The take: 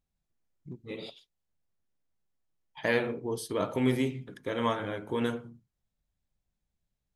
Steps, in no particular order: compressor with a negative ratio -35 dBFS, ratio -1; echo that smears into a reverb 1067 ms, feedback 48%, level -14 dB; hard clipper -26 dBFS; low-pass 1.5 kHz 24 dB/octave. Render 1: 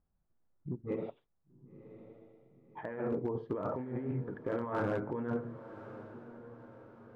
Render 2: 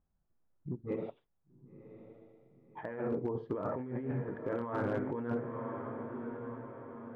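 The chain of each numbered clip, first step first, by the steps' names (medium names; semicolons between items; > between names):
compressor with a negative ratio > low-pass > hard clipper > echo that smears into a reverb; echo that smears into a reverb > compressor with a negative ratio > low-pass > hard clipper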